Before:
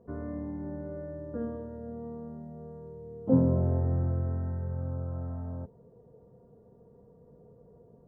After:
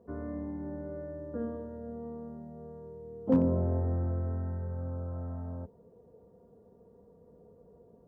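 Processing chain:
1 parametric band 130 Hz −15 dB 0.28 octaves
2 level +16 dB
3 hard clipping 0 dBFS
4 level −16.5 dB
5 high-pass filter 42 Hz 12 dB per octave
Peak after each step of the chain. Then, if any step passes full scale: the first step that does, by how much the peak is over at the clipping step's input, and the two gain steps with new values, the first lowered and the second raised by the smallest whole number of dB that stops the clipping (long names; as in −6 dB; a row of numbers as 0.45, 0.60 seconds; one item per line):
−13.0, +3.0, 0.0, −16.5, −14.5 dBFS
step 2, 3.0 dB
step 2 +13 dB, step 4 −13.5 dB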